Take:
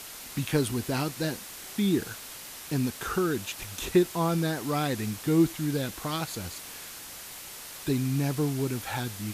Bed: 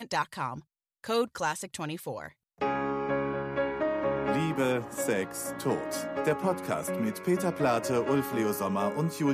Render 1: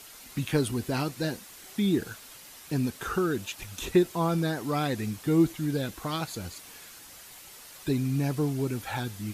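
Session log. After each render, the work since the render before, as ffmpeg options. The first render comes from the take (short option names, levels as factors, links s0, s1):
-af "afftdn=nr=7:nf=-43"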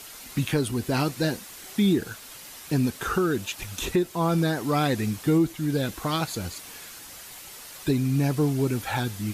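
-af "acontrast=28,alimiter=limit=0.211:level=0:latency=1:release=490"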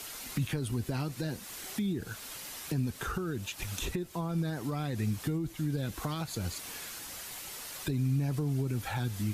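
-filter_complex "[0:a]alimiter=limit=0.126:level=0:latency=1:release=39,acrossover=split=150[s0][s1];[s1]acompressor=threshold=0.0178:ratio=6[s2];[s0][s2]amix=inputs=2:normalize=0"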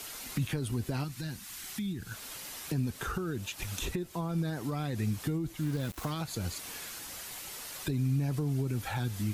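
-filter_complex "[0:a]asettb=1/sr,asplit=3[s0][s1][s2];[s0]atrim=end=1.044[s3];[s1]atrim=start=1.04:end=2.12,asetpts=PTS-STARTPTS,afade=t=in:d=0.004:c=qsin,afade=t=out:st=1.076:d=0.004:c=qsin,equalizer=f=490:t=o:w=1.3:g=-14[s4];[s2]atrim=start=2.116[s5];[s3][s4]acrossfade=d=0.004:c1=hsin:c2=qsin[s6];[s6][s5]acrossfade=d=0.004:c1=qsin:c2=hsin,asplit=3[s7][s8][s9];[s7]afade=t=out:st=5.6:d=0.02[s10];[s8]aeval=exprs='val(0)*gte(abs(val(0)),0.00944)':c=same,afade=t=in:st=5.6:d=0.02,afade=t=out:st=6.09:d=0.02[s11];[s9]afade=t=in:st=6.09:d=0.02[s12];[s10][s11][s12]amix=inputs=3:normalize=0"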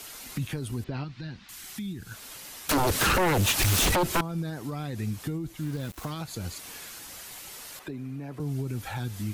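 -filter_complex "[0:a]asettb=1/sr,asplit=3[s0][s1][s2];[s0]atrim=end=0.844[s3];[s1]atrim=start=0.84:end=1.49,asetpts=PTS-STARTPTS,afade=t=in:d=0.004:c=qsin,afade=t=out:st=0.646:d=0.004:c=qsin,lowpass=f=4300:w=0.5412,lowpass=f=4300:w=1.3066[s4];[s2]atrim=start=1.486[s5];[s3][s4]acrossfade=d=0.004:c1=hsin:c2=qsin[s6];[s6][s5]acrossfade=d=0.004:c1=qsin:c2=hsin,asettb=1/sr,asplit=3[s7][s8][s9];[s7]atrim=end=2.694[s10];[s8]atrim=start=2.69:end=4.21,asetpts=PTS-STARTPTS,afade=t=in:d=0.004:c=qsin,afade=t=out:st=1.516:d=0.004:c=qsin,aeval=exprs='0.106*sin(PI/2*6.31*val(0)/0.106)':c=same[s11];[s9]atrim=start=4.206[s12];[s10][s11]acrossfade=d=0.004:c1=hsin:c2=qsin[s13];[s13][s12]acrossfade=d=0.004:c1=qsin:c2=hsin,asettb=1/sr,asplit=3[s14][s15][s16];[s14]atrim=end=7.794[s17];[s15]atrim=start=7.79:end=8.4,asetpts=PTS-STARTPTS,afade=t=in:d=0.004:c=qsin,afade=t=out:st=0.606:d=0.004:c=qsin,acrossover=split=230 2600:gain=0.224 1 0.224[s18][s19][s20];[s18][s19][s20]amix=inputs=3:normalize=0[s21];[s16]atrim=start=8.396[s22];[s17][s21]acrossfade=d=0.004:c1=hsin:c2=qsin[s23];[s23][s22]acrossfade=d=0.004:c1=qsin:c2=hsin"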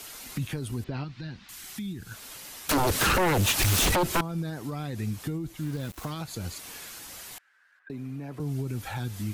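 -filter_complex "[0:a]asettb=1/sr,asplit=3[s0][s1][s2];[s0]atrim=end=7.384[s3];[s1]atrim=start=7.38:end=7.9,asetpts=PTS-STARTPTS,afade=t=in:d=0.004:c=qsin,afade=t=out:st=0.516:d=0.004:c=qsin,bandpass=f=1600:t=q:w=16[s4];[s2]atrim=start=7.896[s5];[s3][s4]acrossfade=d=0.004:c1=hsin:c2=qsin[s6];[s6][s5]acrossfade=d=0.004:c1=qsin:c2=hsin"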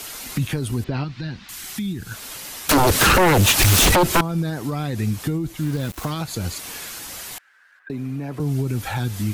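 -af "volume=2.66"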